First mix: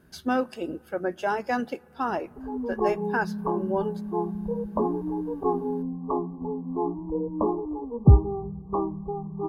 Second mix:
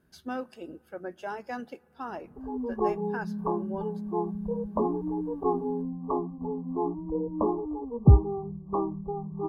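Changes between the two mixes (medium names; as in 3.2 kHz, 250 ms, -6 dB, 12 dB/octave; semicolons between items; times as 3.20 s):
speech -9.5 dB; background: send off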